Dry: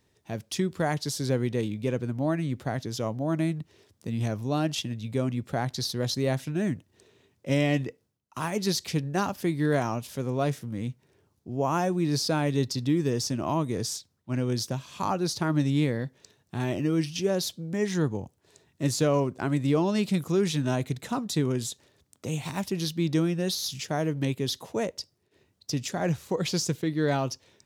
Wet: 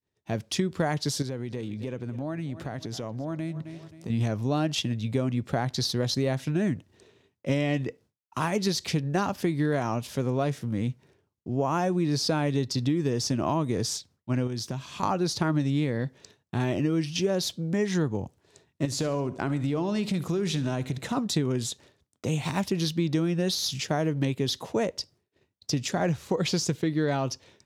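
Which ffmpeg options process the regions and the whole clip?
-filter_complex "[0:a]asettb=1/sr,asplit=3[a][b][c];[a]atrim=end=1.224[d];[b]atrim=start=1.22:end=4.1,asetpts=PTS-STARTPTS,afade=t=in:d=0.004:c=qsin,afade=t=out:st=2.876:d=0.004:c=qsin,aecho=1:1:264|528|792:0.106|0.0381|0.0137,atrim=end_sample=127008,acompressor=threshold=-36dB:ratio=4:attack=3.2:release=140:knee=1:detection=peak[e];[c]atrim=start=4.096[f];[d][e]acrossfade=d=0.004:c1=hsin:c2=qsin[g];[g][f]acrossfade=d=0.004:c1=qsin:c2=hsin,asettb=1/sr,asplit=3[h][i][j];[h]atrim=end=14.474[k];[i]atrim=start=14.47:end=15.03,asetpts=PTS-STARTPTS,afade=t=in:d=0.004:c=qsin,afade=t=out:st=0.556:d=0.004:c=qsin,equalizer=f=530:w=5:g=-5.5,acompressor=threshold=-35dB:ratio=2.5:attack=3.2:release=140:knee=1:detection=peak[l];[j]atrim=start=15.026[m];[k][l]acrossfade=d=0.004:c1=hsin:c2=qsin[n];[n][m]acrossfade=d=0.004:c1=qsin:c2=hsin,asettb=1/sr,asplit=3[o][p][q];[o]atrim=end=18.854[r];[p]atrim=start=18.85:end=21.17,asetpts=PTS-STARTPTS,afade=t=in:d=0.004:c=qsin,afade=t=out:st=2.316:d=0.004:c=qsin,acompressor=threshold=-29dB:ratio=4:attack=3.2:release=140:knee=1:detection=peak,aecho=1:1:70|140|210|280:0.141|0.0636|0.0286|0.0129,atrim=end_sample=102312[s];[q]atrim=start=21.166[t];[r][s]acrossfade=d=0.004:c1=hsin:c2=qsin[u];[u][t]acrossfade=d=0.004:c1=qsin:c2=hsin,highshelf=f=9.9k:g=-11,acompressor=threshold=-27dB:ratio=6,agate=range=-33dB:threshold=-56dB:ratio=3:detection=peak,volume=5dB"

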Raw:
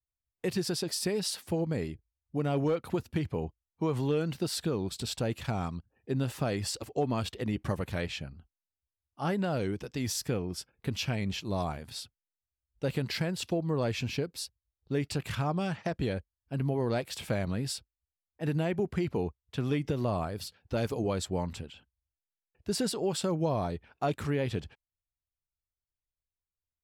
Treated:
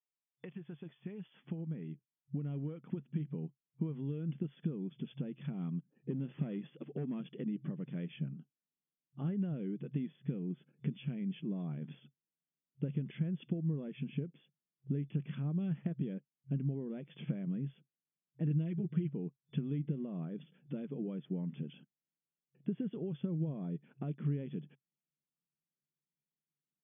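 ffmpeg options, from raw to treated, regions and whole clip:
-filter_complex "[0:a]asettb=1/sr,asplit=3[a][b][c];[a]atrim=end=5.534[d];[b]atrim=start=5.53:end=7.21,asetpts=PTS-STARTPTS,afade=t=in:d=0.004:c=qsin,afade=t=out:st=1.676:d=0.004:c=qsin,highpass=f=100:p=1,acrusher=bits=8:mode=log:mix=0:aa=0.000001,asoftclip=type=hard:threshold=-27.5dB[e];[c]atrim=start=7.206[f];[d][e]acrossfade=d=0.004:c1=hsin:c2=qsin[g];[g][f]acrossfade=d=0.004:c1=qsin:c2=hsin,asettb=1/sr,asplit=3[h][i][j];[h]atrim=end=18.504[k];[i]atrim=start=18.5:end=19.13,asetpts=PTS-STARTPTS,afade=t=in:d=0.004:c=qsin,afade=t=out:st=0.626:d=0.004:c=qsin,highshelf=f=3.2k:g=10,bandreject=f=790:w=14,aecho=1:1:6.3:1,atrim=end_sample=27783[l];[j]atrim=start=19.126[m];[k][l]acrossfade=d=0.004:c1=hsin:c2=qsin[n];[n][m]acrossfade=d=0.004:c1=qsin:c2=hsin,acompressor=threshold=-40dB:ratio=16,asubboost=boost=12:cutoff=240,afftfilt=real='re*between(b*sr/4096,130,3500)':imag='im*between(b*sr/4096,130,3500)':win_size=4096:overlap=0.75,volume=-6dB"

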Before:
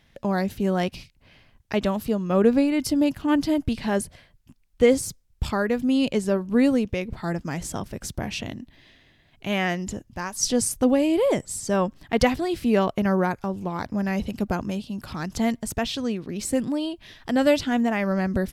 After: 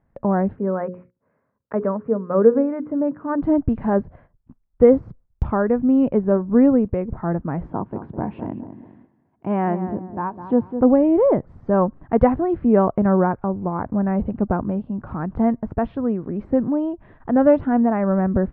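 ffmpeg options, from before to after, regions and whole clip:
-filter_complex "[0:a]asettb=1/sr,asplit=3[a][b][c];[a]atrim=end=0.564[d];[b]atrim=start=0.56:end=3.42,asetpts=PTS-STARTPTS,afade=t=in:d=0.004:c=qsin,afade=t=out:st=2.856:d=0.004:c=qsin,highpass=230,equalizer=f=330:t=q:w=4:g=-9,equalizer=f=470:t=q:w=4:g=5,equalizer=f=760:t=q:w=4:g=-10,lowpass=f=2k:w=0.5412,lowpass=f=2k:w=1.3066,bandreject=f=60:t=h:w=6,bandreject=f=120:t=h:w=6,bandreject=f=180:t=h:w=6,bandreject=f=240:t=h:w=6,bandreject=f=300:t=h:w=6,bandreject=f=360:t=h:w=6,bandreject=f=420:t=h:w=6,bandreject=f=480:t=h:w=6,bandreject=f=540:t=h:w=6[e];[c]atrim=start=3.416[f];[d][e]acrossfade=d=0.004:c1=hsin:c2=qsin[g];[g][f]acrossfade=d=0.004:c1=qsin:c2=hsin,asettb=1/sr,asplit=3[h][i][j];[h]atrim=end=7.704[k];[i]atrim=start=7.7:end=10.81,asetpts=PTS-STARTPTS,afade=t=in:d=0.004:c=qsin,afade=t=out:st=3.106:d=0.004:c=qsin,highpass=120,equalizer=f=320:t=q:w=4:g=4,equalizer=f=580:t=q:w=4:g=-4,equalizer=f=940:t=q:w=4:g=6,equalizer=f=1.3k:t=q:w=4:g=-3,equalizer=f=1.9k:t=q:w=4:g=-4,lowpass=f=3.8k:w=0.5412,lowpass=f=3.8k:w=1.3066,asplit=2[l][m];[m]adelay=206,lowpass=f=1.2k:p=1,volume=-9dB,asplit=2[n][o];[o]adelay=206,lowpass=f=1.2k:p=1,volume=0.37,asplit=2[p][q];[q]adelay=206,lowpass=f=1.2k:p=1,volume=0.37,asplit=2[r][s];[s]adelay=206,lowpass=f=1.2k:p=1,volume=0.37[t];[l][n][p][r][t]amix=inputs=5:normalize=0,atrim=end_sample=137151[u];[j]atrim=start=10.806[v];[k][u]acrossfade=d=0.004:c1=hsin:c2=qsin[w];[w][v]acrossfade=d=0.004:c1=qsin:c2=hsin,lowpass=f=1.3k:w=0.5412,lowpass=f=1.3k:w=1.3066,agate=range=-9dB:threshold=-53dB:ratio=16:detection=peak,volume=5dB"

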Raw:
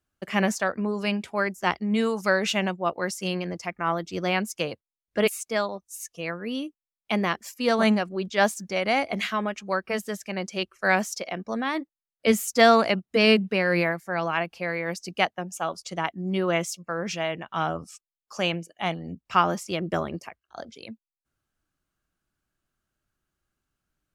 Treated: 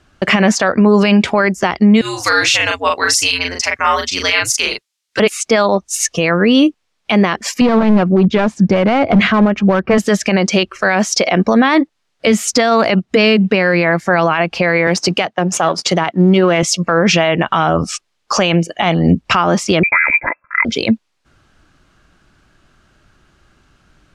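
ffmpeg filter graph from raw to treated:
-filter_complex "[0:a]asettb=1/sr,asplit=3[a][b][c];[a]atrim=end=2.014[d];[b]atrim=start=2.01:end=5.2,asetpts=PTS-STARTPTS,afade=t=in:d=0.004:c=qsin,afade=t=out:st=3.186:d=0.004:c=qsin,aderivative,afreqshift=-96,asplit=2[e][f];[f]adelay=39,volume=-3dB[g];[e][g]amix=inputs=2:normalize=0,atrim=end_sample=140679[h];[c]atrim=start=5.196[i];[d][h]acrossfade=d=0.004:c1=hsin:c2=qsin[j];[j][i]acrossfade=d=0.004:c1=qsin:c2=hsin,asettb=1/sr,asplit=3[k][l][m];[k]atrim=end=7.614[n];[l]atrim=start=7.61:end=9.98,asetpts=PTS-STARTPTS,afade=t=in:d=0.004:c=qsin,afade=t=out:st=2.366:d=0.004:c=qsin,lowpass=f=1.1k:p=1,equalizer=f=110:w=0.62:g=9,aeval=exprs='clip(val(0),-1,0.0631)':c=same[o];[m]atrim=start=9.976[p];[n][o]acrossfade=d=0.004:c1=hsin:c2=qsin[q];[q][p]acrossfade=d=0.004:c1=qsin:c2=hsin,asettb=1/sr,asplit=3[r][s][t];[r]atrim=end=14.874[u];[s]atrim=start=14.87:end=16.63,asetpts=PTS-STARTPTS,afade=t=in:d=0.004:c=qsin,afade=t=out:st=1.756:d=0.004:c=qsin,aeval=exprs='if(lt(val(0),0),0.708*val(0),val(0))':c=same,highpass=f=120:w=0.5412,highpass=f=120:w=1.3066,bandreject=f=220:w=5.1[v];[t]atrim=start=16.626[w];[u][v]acrossfade=d=0.004:c1=hsin:c2=qsin[x];[x][w]acrossfade=d=0.004:c1=qsin:c2=hsin,asettb=1/sr,asplit=3[y][z][aa];[y]atrim=end=19.834[ab];[z]atrim=start=19.83:end=20.65,asetpts=PTS-STARTPTS,afade=t=in:d=0.004:c=qsin,afade=t=out:st=0.816:d=0.004:c=qsin,highpass=f=550:p=1,aecho=1:1:2.9:0.62,atrim=end_sample=36162,lowpass=f=2.3k:t=q:w=0.5098,lowpass=f=2.3k:t=q:w=0.6013,lowpass=f=2.3k:t=q:w=0.9,lowpass=f=2.3k:t=q:w=2.563,afreqshift=-2700[ac];[aa]atrim=start=20.646[ad];[ab][ac]acrossfade=d=0.004:c1=hsin:c2=qsin[ae];[ae][ad]acrossfade=d=0.004:c1=qsin:c2=hsin,lowpass=5.2k,acompressor=threshold=-35dB:ratio=3,alimiter=level_in=31dB:limit=-1dB:release=50:level=0:latency=1,volume=-2dB"

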